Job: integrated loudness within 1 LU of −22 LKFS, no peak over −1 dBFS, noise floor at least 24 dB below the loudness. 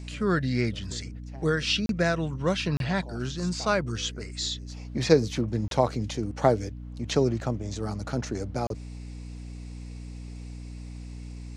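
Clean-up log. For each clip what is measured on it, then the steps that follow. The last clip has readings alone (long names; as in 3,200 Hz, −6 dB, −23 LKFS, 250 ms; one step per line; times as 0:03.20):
number of dropouts 4; longest dropout 32 ms; mains hum 60 Hz; hum harmonics up to 300 Hz; level of the hum −37 dBFS; integrated loudness −28.0 LKFS; sample peak −5.5 dBFS; target loudness −22.0 LKFS
→ repair the gap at 0:01.86/0:02.77/0:05.68/0:08.67, 32 ms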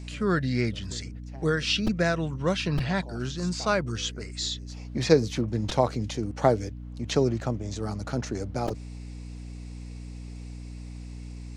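number of dropouts 0; mains hum 60 Hz; hum harmonics up to 300 Hz; level of the hum −37 dBFS
→ mains-hum notches 60/120/180/240/300 Hz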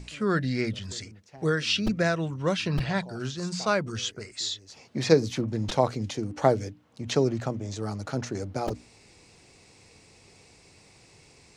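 mains hum none found; integrated loudness −28.0 LKFS; sample peak −6.0 dBFS; target loudness −22.0 LKFS
→ level +6 dB
brickwall limiter −1 dBFS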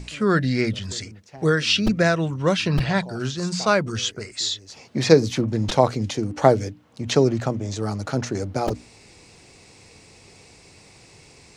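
integrated loudness −22.5 LKFS; sample peak −1.0 dBFS; background noise floor −50 dBFS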